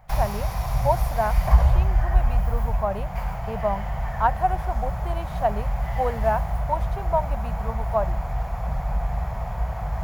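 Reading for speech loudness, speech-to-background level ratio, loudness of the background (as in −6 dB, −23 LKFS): −29.0 LKFS, −2.0 dB, −27.0 LKFS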